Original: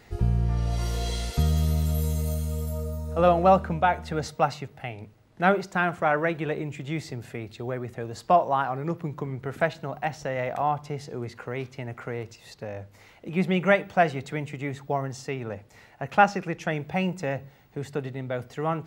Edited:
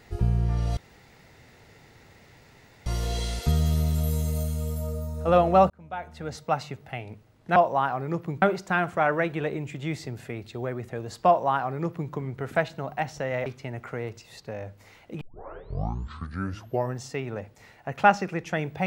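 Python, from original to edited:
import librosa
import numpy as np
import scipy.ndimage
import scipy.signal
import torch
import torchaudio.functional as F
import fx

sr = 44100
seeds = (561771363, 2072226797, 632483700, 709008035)

y = fx.edit(x, sr, fx.insert_room_tone(at_s=0.77, length_s=2.09),
    fx.fade_in_span(start_s=3.61, length_s=1.11),
    fx.duplicate(start_s=8.32, length_s=0.86, to_s=5.47),
    fx.cut(start_s=10.51, length_s=1.09),
    fx.tape_start(start_s=13.35, length_s=1.81), tone=tone)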